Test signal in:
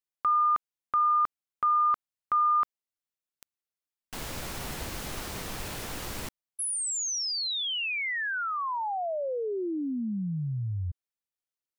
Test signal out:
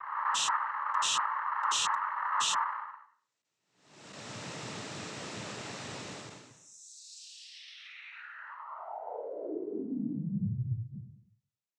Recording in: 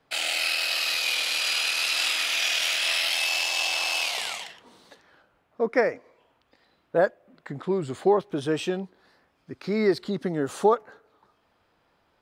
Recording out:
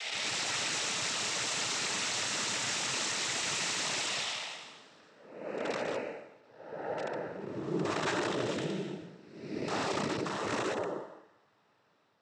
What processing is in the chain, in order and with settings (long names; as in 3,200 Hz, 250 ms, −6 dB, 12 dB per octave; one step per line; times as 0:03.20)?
spectrum smeared in time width 464 ms
wrap-around overflow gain 25.5 dB
cochlear-implant simulation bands 12